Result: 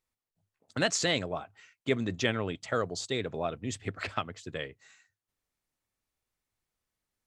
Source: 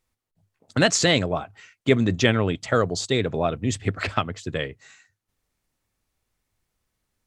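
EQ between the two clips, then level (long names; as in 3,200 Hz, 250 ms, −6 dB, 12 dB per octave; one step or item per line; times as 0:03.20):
low-shelf EQ 240 Hz −5.5 dB
−8.0 dB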